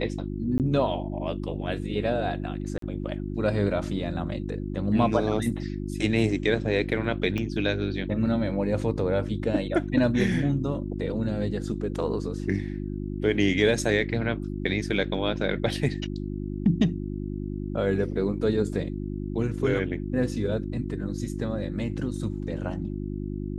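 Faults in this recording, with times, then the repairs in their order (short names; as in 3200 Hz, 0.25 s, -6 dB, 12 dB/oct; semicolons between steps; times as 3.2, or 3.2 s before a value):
hum 50 Hz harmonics 7 -32 dBFS
0.58–0.6 gap 18 ms
2.78–2.82 gap 43 ms
7.38 pop -18 dBFS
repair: de-click; de-hum 50 Hz, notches 7; interpolate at 0.58, 18 ms; interpolate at 2.78, 43 ms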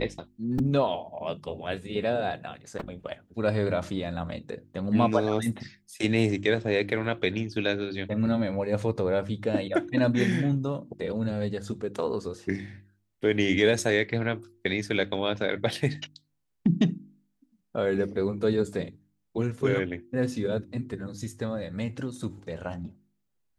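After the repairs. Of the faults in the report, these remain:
7.38 pop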